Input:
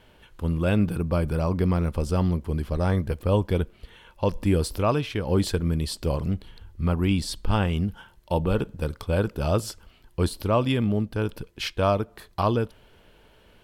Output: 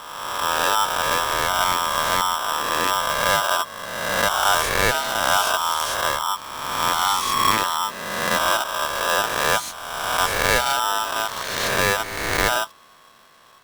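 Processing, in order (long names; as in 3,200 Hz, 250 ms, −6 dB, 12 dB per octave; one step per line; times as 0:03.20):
peak hold with a rise ahead of every peak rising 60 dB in 1.60 s
ring modulator with a square carrier 1,100 Hz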